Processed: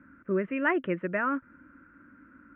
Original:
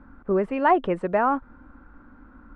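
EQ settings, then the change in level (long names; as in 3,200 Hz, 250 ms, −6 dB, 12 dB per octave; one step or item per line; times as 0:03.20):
loudspeaker in its box 180–3,000 Hz, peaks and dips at 230 Hz −7 dB, 440 Hz −10 dB, 1,100 Hz −7 dB
phaser with its sweep stopped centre 1,900 Hz, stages 4
+2.5 dB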